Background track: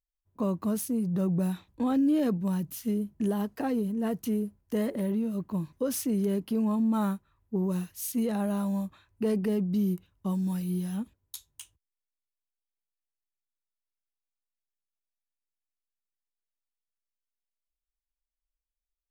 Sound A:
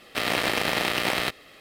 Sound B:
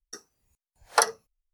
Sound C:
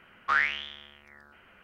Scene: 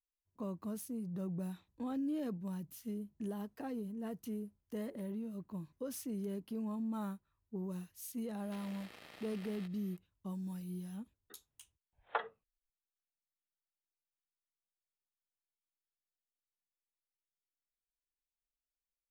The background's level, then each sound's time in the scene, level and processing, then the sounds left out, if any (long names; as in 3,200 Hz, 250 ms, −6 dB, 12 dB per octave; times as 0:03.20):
background track −12.5 dB
0:08.37: mix in A −17.5 dB + downward compressor 4 to 1, threshold −35 dBFS
0:11.17: mix in B −14 dB + downsampling to 8,000 Hz
not used: C